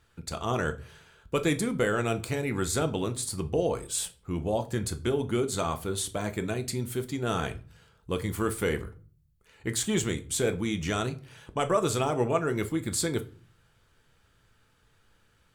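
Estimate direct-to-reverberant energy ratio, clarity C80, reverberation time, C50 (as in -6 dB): 8.0 dB, 22.5 dB, 0.40 s, 17.5 dB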